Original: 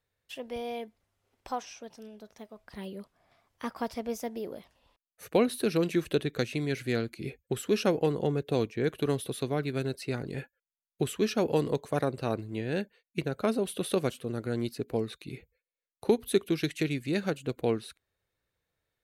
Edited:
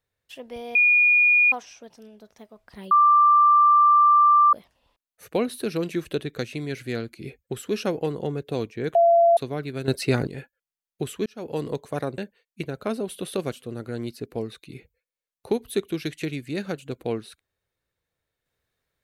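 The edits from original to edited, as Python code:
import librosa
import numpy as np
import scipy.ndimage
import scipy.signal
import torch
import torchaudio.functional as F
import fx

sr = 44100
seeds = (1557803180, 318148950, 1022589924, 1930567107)

y = fx.edit(x, sr, fx.bleep(start_s=0.75, length_s=0.77, hz=2440.0, db=-14.0),
    fx.bleep(start_s=2.91, length_s=1.62, hz=1180.0, db=-12.5),
    fx.bleep(start_s=8.95, length_s=0.42, hz=680.0, db=-13.0),
    fx.clip_gain(start_s=9.88, length_s=0.39, db=11.0),
    fx.fade_in_span(start_s=11.26, length_s=0.4),
    fx.cut(start_s=12.18, length_s=0.58), tone=tone)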